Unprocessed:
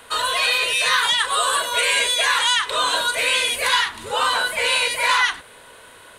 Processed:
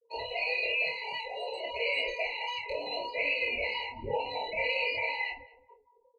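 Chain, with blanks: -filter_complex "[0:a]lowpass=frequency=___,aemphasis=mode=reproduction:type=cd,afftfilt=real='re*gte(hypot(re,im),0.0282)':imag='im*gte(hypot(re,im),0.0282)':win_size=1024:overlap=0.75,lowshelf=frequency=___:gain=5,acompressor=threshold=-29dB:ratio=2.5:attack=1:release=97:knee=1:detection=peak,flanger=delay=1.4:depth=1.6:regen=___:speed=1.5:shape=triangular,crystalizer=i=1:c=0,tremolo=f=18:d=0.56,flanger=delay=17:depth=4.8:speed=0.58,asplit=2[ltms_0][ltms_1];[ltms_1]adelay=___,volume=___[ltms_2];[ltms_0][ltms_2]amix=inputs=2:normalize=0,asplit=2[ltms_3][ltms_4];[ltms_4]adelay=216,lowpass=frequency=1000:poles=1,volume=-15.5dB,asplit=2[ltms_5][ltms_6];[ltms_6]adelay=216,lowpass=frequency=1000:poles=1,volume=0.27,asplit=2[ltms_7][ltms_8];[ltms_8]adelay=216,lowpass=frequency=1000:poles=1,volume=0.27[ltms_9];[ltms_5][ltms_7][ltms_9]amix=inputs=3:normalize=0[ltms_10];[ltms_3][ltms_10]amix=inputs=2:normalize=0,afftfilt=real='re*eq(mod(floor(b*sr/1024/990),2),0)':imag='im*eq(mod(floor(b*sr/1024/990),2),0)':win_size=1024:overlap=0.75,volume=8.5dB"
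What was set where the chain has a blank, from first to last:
3400, 150, 70, 28, -3.5dB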